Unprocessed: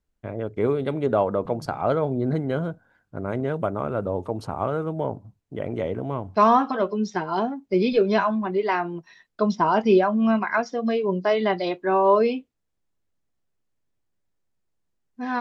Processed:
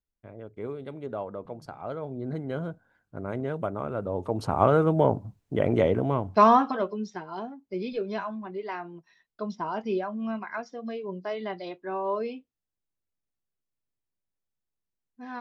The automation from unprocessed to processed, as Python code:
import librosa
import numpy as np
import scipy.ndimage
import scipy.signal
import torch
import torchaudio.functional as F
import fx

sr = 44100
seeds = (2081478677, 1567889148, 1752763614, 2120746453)

y = fx.gain(x, sr, db=fx.line((1.89, -13.0), (2.71, -5.0), (4.06, -5.0), (4.63, 5.5), (5.78, 5.5), (6.69, -2.5), (7.23, -11.5)))